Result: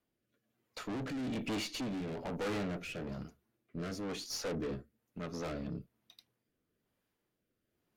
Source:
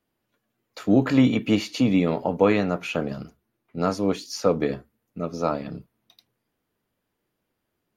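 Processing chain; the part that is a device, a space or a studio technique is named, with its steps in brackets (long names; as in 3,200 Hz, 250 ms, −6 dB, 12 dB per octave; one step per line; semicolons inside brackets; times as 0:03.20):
overdriven rotary cabinet (tube saturation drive 32 dB, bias 0.45; rotating-speaker cabinet horn 1.1 Hz)
level −1.5 dB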